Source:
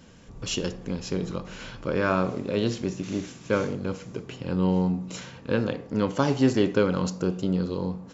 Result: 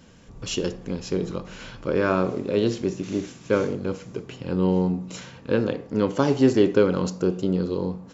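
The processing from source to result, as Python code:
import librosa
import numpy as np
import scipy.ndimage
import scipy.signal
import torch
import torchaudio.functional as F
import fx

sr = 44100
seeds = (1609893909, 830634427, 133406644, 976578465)

y = fx.dynamic_eq(x, sr, hz=380.0, q=1.6, threshold_db=-36.0, ratio=4.0, max_db=6)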